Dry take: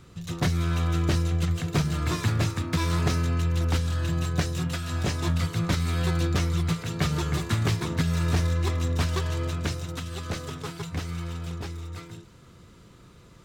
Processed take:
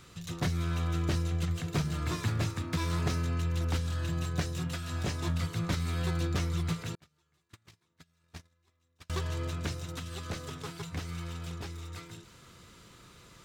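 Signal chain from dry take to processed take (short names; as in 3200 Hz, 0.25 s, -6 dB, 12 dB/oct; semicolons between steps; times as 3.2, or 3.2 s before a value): 6.95–9.1 gate -18 dBFS, range -44 dB; mismatched tape noise reduction encoder only; gain -6 dB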